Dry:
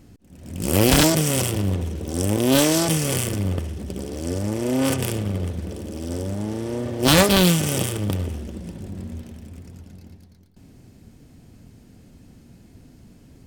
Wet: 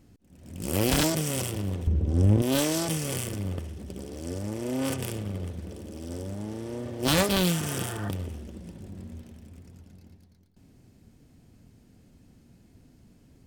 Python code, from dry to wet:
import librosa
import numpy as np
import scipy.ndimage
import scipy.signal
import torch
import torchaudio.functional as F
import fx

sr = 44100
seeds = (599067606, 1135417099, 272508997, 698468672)

y = fx.riaa(x, sr, side='playback', at=(1.87, 2.42))
y = fx.spec_repair(y, sr, seeds[0], start_s=7.53, length_s=0.53, low_hz=540.0, high_hz=1900.0, source='before')
y = y * 10.0 ** (-8.0 / 20.0)